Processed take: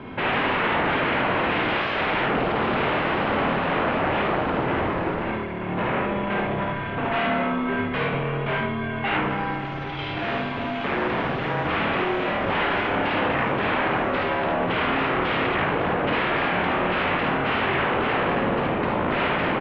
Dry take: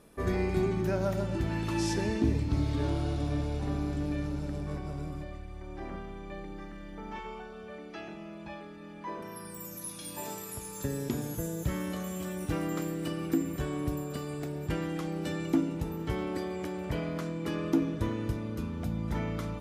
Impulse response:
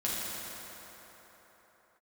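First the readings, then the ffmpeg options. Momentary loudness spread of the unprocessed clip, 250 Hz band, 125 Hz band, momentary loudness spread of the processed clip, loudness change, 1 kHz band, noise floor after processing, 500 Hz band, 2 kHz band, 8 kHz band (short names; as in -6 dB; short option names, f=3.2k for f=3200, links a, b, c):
14 LU, +5.5 dB, +2.5 dB, 5 LU, +10.0 dB, +19.0 dB, -29 dBFS, +11.0 dB, +20.5 dB, under -20 dB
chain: -af "alimiter=level_in=1dB:limit=-24dB:level=0:latency=1:release=12,volume=-1dB,aeval=exprs='0.0562*sin(PI/2*5.62*val(0)/0.0562)':c=same,aecho=1:1:52|74:0.668|0.596,highpass=f=310:t=q:w=0.5412,highpass=f=310:t=q:w=1.307,lowpass=f=3.2k:t=q:w=0.5176,lowpass=f=3.2k:t=q:w=0.7071,lowpass=f=3.2k:t=q:w=1.932,afreqshift=-190,volume=4dB"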